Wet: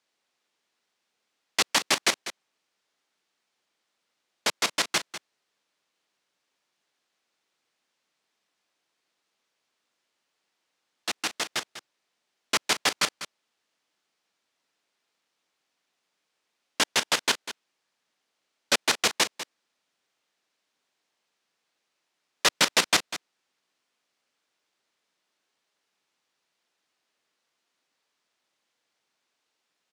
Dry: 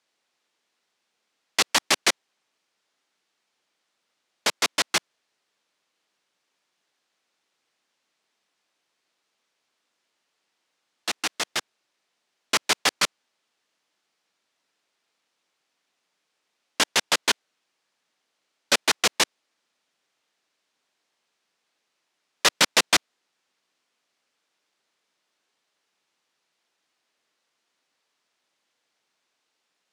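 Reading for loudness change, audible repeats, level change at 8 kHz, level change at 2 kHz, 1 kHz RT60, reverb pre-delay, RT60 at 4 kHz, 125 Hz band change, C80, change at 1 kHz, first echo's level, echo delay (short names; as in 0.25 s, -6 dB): -2.5 dB, 1, -2.5 dB, -2.5 dB, none, none, none, -1.0 dB, none, -2.0 dB, -13.0 dB, 0.197 s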